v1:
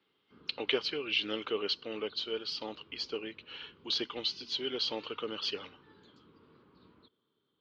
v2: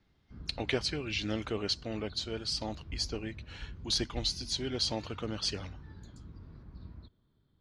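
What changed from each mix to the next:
master: remove speaker cabinet 340–4300 Hz, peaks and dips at 440 Hz +6 dB, 680 Hz -9 dB, 1200 Hz +4 dB, 1800 Hz -4 dB, 3000 Hz +9 dB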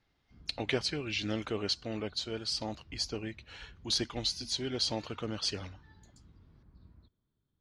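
background -10.0 dB

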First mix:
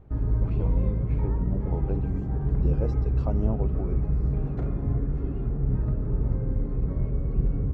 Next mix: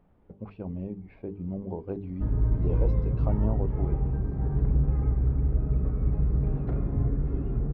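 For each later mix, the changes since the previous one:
background: entry +2.10 s; master: add air absorption 200 m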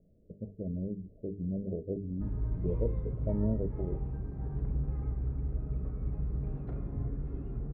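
speech: add rippled Chebyshev low-pass 650 Hz, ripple 3 dB; background -9.0 dB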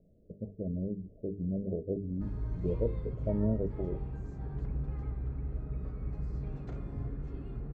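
background -3.0 dB; master: remove tape spacing loss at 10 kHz 43 dB

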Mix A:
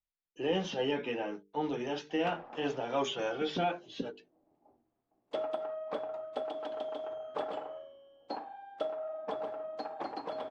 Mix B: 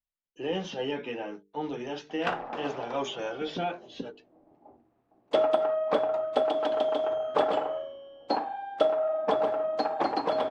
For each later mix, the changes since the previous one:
background +11.5 dB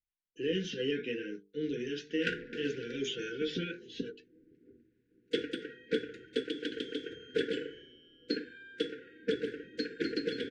master: add brick-wall FIR band-stop 510–1400 Hz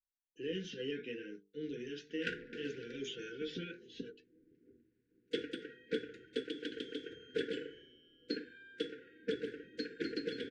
speech -7.0 dB; background -5.0 dB

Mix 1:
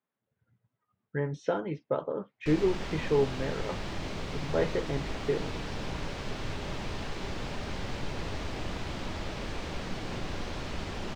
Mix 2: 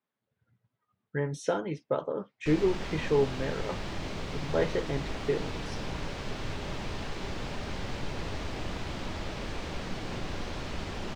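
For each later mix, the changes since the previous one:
speech: remove air absorption 180 m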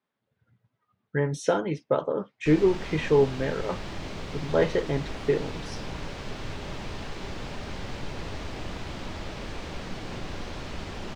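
speech +5.0 dB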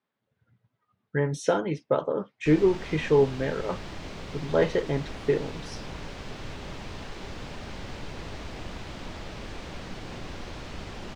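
background: send -8.0 dB

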